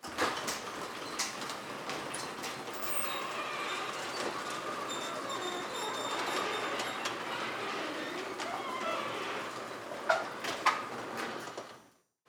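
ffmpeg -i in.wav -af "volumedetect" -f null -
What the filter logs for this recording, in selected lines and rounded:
mean_volume: -37.0 dB
max_volume: -12.0 dB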